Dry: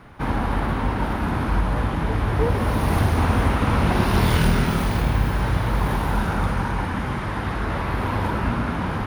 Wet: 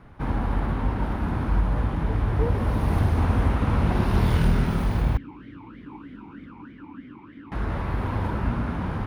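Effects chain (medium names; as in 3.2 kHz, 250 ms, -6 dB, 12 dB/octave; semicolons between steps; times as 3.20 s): tilt EQ -1.5 dB/octave; 5.17–7.52 s: talking filter i-u 3.2 Hz; trim -6.5 dB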